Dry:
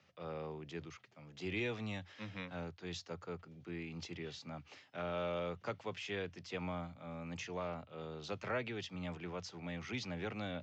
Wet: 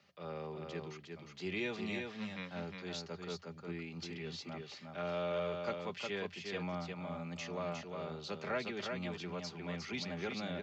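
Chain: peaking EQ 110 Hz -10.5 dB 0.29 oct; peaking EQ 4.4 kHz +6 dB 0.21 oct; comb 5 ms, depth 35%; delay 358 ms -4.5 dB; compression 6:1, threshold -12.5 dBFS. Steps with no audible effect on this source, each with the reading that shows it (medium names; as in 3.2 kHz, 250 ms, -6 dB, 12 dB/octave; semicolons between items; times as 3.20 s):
compression, threshold -12.5 dBFS: peak at its input -24.5 dBFS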